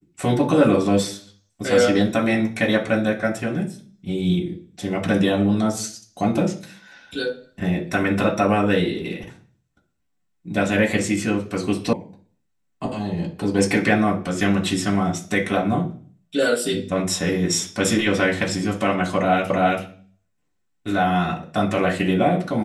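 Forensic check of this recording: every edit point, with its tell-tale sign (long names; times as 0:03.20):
0:11.93: cut off before it has died away
0:19.50: the same again, the last 0.33 s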